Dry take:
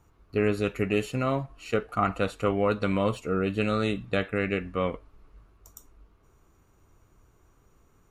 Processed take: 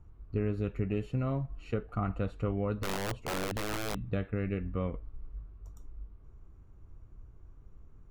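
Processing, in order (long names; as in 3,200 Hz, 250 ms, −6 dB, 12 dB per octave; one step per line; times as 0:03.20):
RIAA equalisation playback
downward compressor 2 to 1, threshold −25 dBFS, peak gain reduction 7.5 dB
0:02.83–0:04.09: wrap-around overflow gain 20.5 dB
level −6.5 dB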